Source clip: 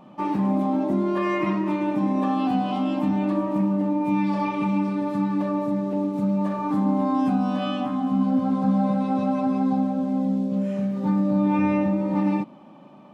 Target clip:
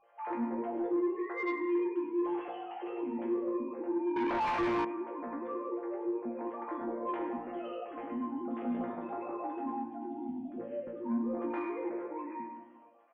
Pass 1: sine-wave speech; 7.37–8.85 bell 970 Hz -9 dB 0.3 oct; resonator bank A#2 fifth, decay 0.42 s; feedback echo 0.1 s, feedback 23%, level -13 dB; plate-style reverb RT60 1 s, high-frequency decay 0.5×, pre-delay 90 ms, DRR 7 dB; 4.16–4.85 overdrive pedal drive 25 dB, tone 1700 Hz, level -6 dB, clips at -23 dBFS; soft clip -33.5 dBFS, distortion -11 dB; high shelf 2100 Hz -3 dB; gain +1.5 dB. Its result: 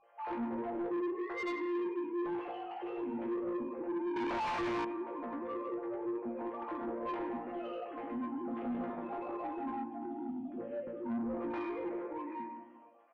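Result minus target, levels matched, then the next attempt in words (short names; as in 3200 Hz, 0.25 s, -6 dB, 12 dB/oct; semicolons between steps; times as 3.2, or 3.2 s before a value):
soft clip: distortion +11 dB
sine-wave speech; 7.37–8.85 bell 970 Hz -9 dB 0.3 oct; resonator bank A#2 fifth, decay 0.42 s; feedback echo 0.1 s, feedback 23%, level -13 dB; plate-style reverb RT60 1 s, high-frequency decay 0.5×, pre-delay 90 ms, DRR 7 dB; 4.16–4.85 overdrive pedal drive 25 dB, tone 1700 Hz, level -6 dB, clips at -23 dBFS; soft clip -25 dBFS, distortion -22 dB; high shelf 2100 Hz -3 dB; gain +1.5 dB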